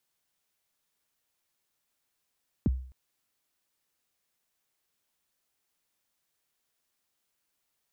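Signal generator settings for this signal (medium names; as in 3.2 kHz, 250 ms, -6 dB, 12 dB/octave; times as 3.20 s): kick drum length 0.26 s, from 330 Hz, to 64 Hz, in 25 ms, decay 0.50 s, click off, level -19 dB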